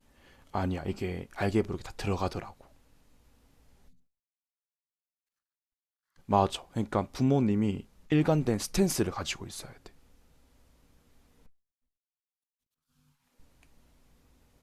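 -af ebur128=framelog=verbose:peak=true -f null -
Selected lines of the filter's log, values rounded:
Integrated loudness:
  I:         -30.1 LUFS
  Threshold: -42.8 LUFS
Loudness range:
  LRA:        12.0 LU
  Threshold: -53.5 LUFS
  LRA low:   -40.6 LUFS
  LRA high:  -28.6 LUFS
True peak:
  Peak:      -10.7 dBFS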